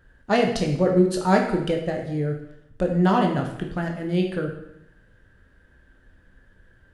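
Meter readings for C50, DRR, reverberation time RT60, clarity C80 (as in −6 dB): 6.0 dB, 1.5 dB, 0.80 s, 9.0 dB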